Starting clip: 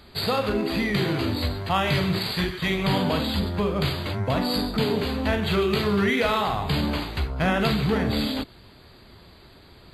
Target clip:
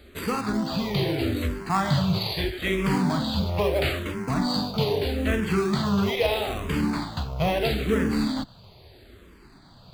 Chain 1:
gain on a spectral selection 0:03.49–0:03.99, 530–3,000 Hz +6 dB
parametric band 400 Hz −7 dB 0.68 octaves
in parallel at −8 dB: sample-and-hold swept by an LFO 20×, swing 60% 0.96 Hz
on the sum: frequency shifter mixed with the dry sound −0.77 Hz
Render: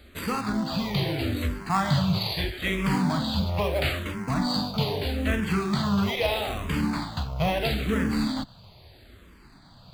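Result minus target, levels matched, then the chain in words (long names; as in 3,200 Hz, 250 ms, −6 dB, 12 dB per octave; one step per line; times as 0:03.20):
500 Hz band −3.0 dB
gain on a spectral selection 0:03.49–0:03.99, 530–3,000 Hz +6 dB
in parallel at −8 dB: sample-and-hold swept by an LFO 20×, swing 60% 0.96 Hz
on the sum: frequency shifter mixed with the dry sound −0.77 Hz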